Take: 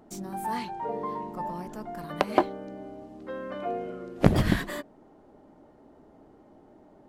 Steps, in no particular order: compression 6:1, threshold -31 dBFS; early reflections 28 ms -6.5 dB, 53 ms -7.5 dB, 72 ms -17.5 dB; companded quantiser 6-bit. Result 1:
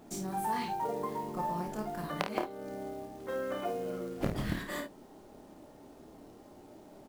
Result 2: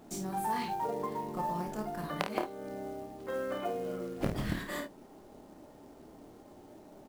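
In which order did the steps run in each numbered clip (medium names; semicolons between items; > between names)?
companded quantiser > compression > early reflections; compression > early reflections > companded quantiser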